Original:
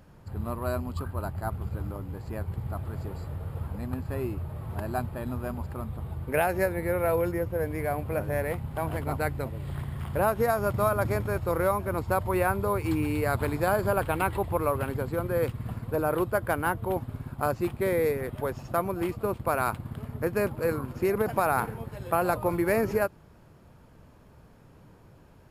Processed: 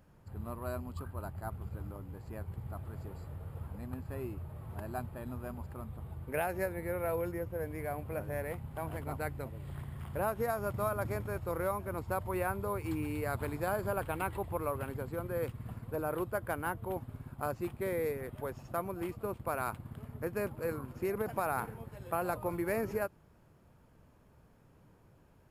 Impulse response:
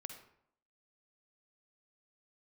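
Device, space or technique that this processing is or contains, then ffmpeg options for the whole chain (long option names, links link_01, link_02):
exciter from parts: -filter_complex "[0:a]asplit=2[link_01][link_02];[link_02]highpass=frequency=3900:width=0.5412,highpass=frequency=3900:width=1.3066,asoftclip=type=tanh:threshold=-33dB,volume=-11dB[link_03];[link_01][link_03]amix=inputs=2:normalize=0,volume=-8.5dB"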